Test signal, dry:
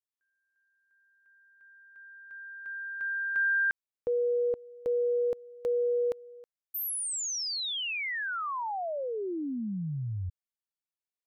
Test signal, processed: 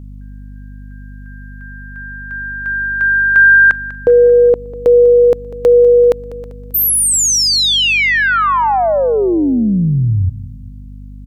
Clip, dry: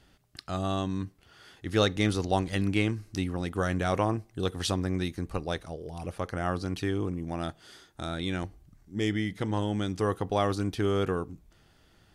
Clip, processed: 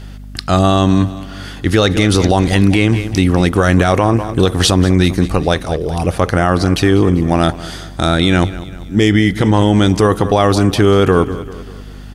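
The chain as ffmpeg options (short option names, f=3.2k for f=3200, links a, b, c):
-af "aeval=exprs='val(0)+0.00282*(sin(2*PI*50*n/s)+sin(2*PI*2*50*n/s)/2+sin(2*PI*3*50*n/s)/3+sin(2*PI*4*50*n/s)/4+sin(2*PI*5*50*n/s)/5)':c=same,aecho=1:1:196|392|588|784:0.141|0.0664|0.0312|0.0147,alimiter=level_in=21.5dB:limit=-1dB:release=50:level=0:latency=1,volume=-1dB"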